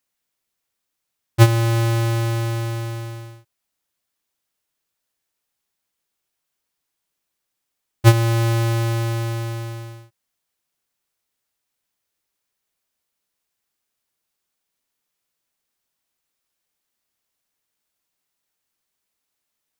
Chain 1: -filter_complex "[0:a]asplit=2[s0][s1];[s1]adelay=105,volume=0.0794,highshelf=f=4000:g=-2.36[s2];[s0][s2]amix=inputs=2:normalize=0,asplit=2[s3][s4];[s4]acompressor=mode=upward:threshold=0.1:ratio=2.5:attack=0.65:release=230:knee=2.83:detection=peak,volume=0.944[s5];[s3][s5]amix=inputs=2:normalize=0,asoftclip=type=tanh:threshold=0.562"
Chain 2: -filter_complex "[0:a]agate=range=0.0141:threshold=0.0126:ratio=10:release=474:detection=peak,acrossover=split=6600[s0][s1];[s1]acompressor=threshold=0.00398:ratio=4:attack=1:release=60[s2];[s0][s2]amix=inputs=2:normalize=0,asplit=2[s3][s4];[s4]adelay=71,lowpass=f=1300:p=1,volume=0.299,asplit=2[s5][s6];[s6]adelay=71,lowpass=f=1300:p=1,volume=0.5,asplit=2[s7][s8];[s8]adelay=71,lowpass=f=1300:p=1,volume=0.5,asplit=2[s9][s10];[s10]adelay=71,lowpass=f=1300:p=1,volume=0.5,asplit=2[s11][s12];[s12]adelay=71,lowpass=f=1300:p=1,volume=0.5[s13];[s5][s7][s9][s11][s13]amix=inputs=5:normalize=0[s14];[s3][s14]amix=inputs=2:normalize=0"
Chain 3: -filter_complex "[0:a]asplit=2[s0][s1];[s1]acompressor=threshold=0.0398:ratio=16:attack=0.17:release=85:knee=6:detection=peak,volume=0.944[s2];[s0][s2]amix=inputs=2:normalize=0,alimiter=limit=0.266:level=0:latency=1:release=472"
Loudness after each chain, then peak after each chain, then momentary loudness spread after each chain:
-16.0 LUFS, -20.0 LUFS, -20.0 LUFS; -5.5 dBFS, -4.0 dBFS, -11.5 dBFS; 14 LU, 17 LU, 12 LU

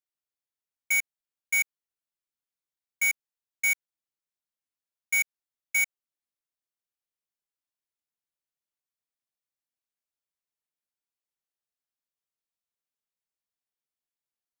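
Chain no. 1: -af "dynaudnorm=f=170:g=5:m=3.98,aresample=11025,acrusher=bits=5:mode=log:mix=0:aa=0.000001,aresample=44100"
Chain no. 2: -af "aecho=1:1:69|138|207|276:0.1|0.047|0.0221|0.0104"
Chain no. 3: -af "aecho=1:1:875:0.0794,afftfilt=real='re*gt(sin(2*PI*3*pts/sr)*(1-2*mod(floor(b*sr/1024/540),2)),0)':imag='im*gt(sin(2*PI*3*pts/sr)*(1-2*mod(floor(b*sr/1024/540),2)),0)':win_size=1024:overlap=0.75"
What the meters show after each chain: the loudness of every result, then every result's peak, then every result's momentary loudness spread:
-15.5 LUFS, -27.0 LUFS, -30.0 LUFS; -7.5 dBFS, -21.5 dBFS, -20.5 dBFS; 5 LU, 7 LU, 22 LU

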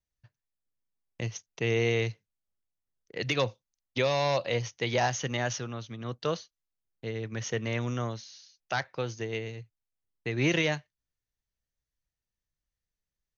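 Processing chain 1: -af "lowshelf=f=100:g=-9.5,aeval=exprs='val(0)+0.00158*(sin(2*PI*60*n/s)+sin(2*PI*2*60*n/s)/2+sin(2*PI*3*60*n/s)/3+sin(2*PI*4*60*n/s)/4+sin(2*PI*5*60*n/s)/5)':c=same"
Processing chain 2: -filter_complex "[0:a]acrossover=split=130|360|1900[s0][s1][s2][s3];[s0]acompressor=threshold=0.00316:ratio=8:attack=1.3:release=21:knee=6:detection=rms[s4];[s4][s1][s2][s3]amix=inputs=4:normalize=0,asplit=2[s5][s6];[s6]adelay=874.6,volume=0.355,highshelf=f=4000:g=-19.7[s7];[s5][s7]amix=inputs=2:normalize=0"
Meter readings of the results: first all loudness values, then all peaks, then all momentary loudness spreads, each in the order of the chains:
-32.0 LUFS, -32.0 LUFS; -15.0 dBFS, -14.5 dBFS; 13 LU, 15 LU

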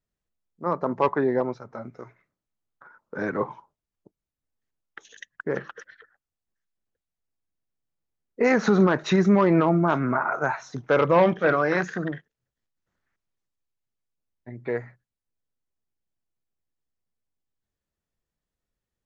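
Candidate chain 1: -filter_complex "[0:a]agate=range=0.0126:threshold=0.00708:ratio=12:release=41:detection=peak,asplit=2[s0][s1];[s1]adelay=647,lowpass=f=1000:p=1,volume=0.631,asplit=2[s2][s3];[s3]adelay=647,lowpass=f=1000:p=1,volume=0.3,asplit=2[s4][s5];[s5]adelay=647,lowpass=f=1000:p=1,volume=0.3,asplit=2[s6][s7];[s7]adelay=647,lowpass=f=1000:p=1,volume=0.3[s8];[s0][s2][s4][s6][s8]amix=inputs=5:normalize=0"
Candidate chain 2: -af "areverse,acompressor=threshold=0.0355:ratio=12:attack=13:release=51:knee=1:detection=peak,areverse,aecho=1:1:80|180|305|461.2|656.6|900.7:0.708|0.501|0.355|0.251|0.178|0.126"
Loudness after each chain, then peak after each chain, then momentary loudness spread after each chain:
-23.0 LUFS, -30.0 LUFS; -7.5 dBFS, -14.0 dBFS; 19 LU, 19 LU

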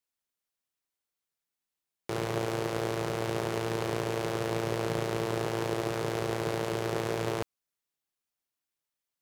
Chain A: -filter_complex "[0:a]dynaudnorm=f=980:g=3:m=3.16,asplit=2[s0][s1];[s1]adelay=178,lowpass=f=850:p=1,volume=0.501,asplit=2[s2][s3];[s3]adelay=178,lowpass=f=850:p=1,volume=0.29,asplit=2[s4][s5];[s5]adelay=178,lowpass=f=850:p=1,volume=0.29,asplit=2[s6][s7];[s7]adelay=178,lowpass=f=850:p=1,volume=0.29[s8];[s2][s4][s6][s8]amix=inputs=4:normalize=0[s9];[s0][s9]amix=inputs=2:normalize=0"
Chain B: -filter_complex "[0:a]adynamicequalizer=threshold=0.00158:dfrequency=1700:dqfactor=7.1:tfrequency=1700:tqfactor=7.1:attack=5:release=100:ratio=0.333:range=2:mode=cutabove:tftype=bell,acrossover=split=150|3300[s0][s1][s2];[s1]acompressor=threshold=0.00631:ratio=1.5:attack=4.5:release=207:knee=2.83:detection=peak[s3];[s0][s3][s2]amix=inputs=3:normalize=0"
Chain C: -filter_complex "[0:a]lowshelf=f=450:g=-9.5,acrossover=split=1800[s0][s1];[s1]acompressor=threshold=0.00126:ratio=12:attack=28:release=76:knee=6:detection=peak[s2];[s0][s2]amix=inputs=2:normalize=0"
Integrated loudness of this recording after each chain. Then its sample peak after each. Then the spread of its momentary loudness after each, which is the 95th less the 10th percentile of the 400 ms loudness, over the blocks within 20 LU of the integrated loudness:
-22.0 LUFS, -36.5 LUFS, -37.0 LUFS; -5.5 dBFS, -20.0 dBFS, -20.0 dBFS; 3 LU, 2 LU, 2 LU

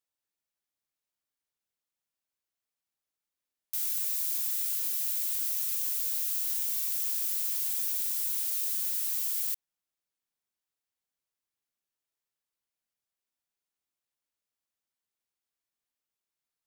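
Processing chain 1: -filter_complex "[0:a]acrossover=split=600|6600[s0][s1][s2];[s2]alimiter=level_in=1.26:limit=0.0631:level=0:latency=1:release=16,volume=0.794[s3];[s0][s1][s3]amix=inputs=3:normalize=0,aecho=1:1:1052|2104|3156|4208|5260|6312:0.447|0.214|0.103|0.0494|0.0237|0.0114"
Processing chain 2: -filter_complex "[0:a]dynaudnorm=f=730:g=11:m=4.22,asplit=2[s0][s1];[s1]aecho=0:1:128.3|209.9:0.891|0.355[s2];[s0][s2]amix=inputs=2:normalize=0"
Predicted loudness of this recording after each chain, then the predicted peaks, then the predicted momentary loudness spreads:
-31.5 LUFS, -13.5 LUFS; -21.0 dBFS, -2.5 dBFS; 16 LU, 5 LU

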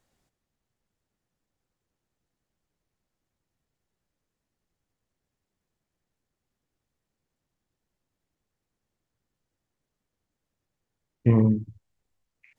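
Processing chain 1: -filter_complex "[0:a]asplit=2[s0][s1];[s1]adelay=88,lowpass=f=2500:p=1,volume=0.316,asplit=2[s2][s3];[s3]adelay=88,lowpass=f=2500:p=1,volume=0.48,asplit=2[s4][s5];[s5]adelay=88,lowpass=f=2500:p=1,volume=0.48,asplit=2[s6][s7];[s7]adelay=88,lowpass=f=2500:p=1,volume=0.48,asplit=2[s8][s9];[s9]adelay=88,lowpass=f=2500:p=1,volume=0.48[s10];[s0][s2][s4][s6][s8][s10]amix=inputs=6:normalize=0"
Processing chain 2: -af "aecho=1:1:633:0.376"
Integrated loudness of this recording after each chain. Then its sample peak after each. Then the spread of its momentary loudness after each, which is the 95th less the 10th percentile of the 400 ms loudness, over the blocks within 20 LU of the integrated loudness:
-22.5 LUFS, -25.0 LUFS; -6.5 dBFS, -7.5 dBFS; 10 LU, 11 LU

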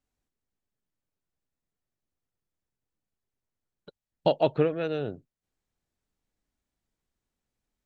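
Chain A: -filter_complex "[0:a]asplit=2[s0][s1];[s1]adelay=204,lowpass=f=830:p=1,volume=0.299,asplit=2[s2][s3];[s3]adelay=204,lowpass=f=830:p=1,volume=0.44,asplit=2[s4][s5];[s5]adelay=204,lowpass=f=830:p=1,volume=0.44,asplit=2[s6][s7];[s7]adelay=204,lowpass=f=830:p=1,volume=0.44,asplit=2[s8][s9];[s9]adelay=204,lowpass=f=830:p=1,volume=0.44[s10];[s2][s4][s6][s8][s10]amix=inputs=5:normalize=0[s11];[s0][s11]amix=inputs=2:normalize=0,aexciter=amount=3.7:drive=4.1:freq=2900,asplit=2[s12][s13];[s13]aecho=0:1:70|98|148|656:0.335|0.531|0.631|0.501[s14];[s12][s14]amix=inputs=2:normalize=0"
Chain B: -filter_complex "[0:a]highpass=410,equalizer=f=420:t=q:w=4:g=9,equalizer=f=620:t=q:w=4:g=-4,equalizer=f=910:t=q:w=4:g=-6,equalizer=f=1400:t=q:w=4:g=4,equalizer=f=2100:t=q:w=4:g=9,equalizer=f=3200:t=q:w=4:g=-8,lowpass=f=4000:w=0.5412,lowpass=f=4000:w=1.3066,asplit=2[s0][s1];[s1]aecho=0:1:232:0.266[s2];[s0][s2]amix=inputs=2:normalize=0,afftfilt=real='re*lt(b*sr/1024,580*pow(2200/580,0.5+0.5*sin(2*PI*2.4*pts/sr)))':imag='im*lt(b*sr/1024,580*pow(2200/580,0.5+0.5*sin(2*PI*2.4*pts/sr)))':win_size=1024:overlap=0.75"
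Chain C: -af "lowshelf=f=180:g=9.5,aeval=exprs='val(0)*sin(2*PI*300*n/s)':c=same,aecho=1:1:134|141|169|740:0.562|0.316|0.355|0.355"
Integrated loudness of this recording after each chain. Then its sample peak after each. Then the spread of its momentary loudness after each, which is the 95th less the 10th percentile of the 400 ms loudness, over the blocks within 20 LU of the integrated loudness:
-25.0 LUFS, -28.5 LUFS, -29.0 LUFS; -6.5 dBFS, -11.5 dBFS, -10.5 dBFS; 17 LU, 14 LU, 16 LU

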